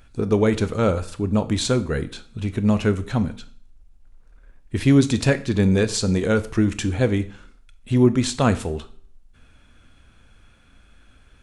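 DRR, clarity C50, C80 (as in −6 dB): 12.0 dB, 16.0 dB, 20.0 dB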